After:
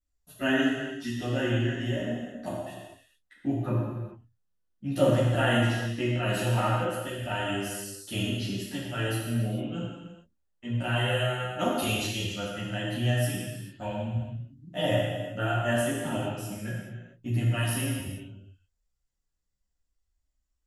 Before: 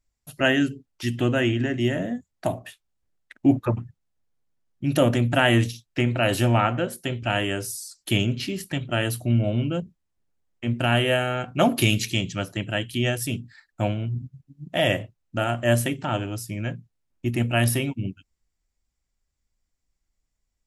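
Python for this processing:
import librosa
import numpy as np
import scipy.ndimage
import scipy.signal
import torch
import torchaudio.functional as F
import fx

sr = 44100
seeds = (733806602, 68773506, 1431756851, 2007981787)

y = fx.chorus_voices(x, sr, voices=4, hz=0.24, base_ms=13, depth_ms=3.6, mix_pct=60)
y = fx.notch(y, sr, hz=2300.0, q=6.5)
y = fx.rev_gated(y, sr, seeds[0], gate_ms=470, shape='falling', drr_db=-4.5)
y = y * librosa.db_to_amplitude(-7.5)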